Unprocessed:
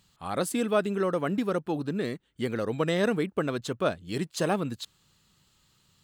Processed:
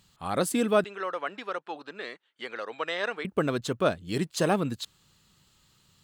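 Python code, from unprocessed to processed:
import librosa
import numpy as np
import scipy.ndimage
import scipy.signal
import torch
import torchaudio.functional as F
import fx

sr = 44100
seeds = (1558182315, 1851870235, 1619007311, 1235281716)

y = fx.bandpass_edges(x, sr, low_hz=800.0, high_hz=4300.0, at=(0.84, 3.25))
y = y * librosa.db_to_amplitude(2.0)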